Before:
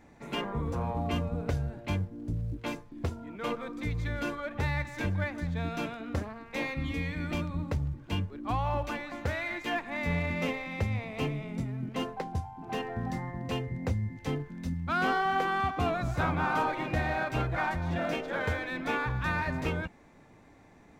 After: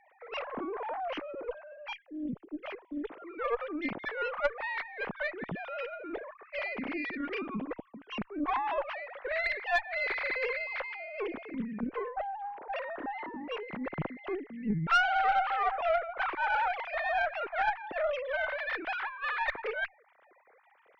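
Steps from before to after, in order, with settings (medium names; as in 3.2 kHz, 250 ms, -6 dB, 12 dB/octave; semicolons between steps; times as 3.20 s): formants replaced by sine waves; valve stage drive 20 dB, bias 0.7; trim +2 dB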